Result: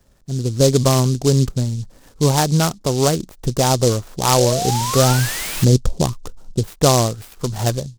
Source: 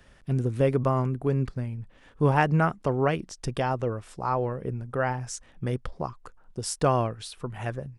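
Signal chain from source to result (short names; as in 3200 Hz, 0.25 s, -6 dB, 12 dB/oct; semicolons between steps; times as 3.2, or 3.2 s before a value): 4.96–6.68 tilt shelf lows +5.5 dB, about 660 Hz; AGC gain up to 16.5 dB; 4.38–5.65 painted sound rise 520–2800 Hz -20 dBFS; tape spacing loss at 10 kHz 28 dB; noise-modulated delay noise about 5400 Hz, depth 0.11 ms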